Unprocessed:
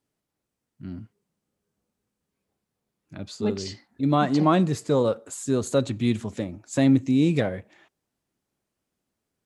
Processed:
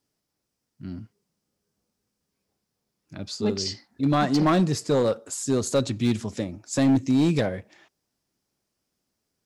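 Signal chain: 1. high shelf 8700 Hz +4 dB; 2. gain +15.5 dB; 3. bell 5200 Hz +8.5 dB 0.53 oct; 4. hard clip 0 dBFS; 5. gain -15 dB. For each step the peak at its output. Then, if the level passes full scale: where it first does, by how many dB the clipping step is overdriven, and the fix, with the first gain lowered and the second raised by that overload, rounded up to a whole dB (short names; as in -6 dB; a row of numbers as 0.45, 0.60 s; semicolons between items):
-7.0, +8.5, +8.5, 0.0, -15.0 dBFS; step 2, 8.5 dB; step 2 +6.5 dB, step 5 -6 dB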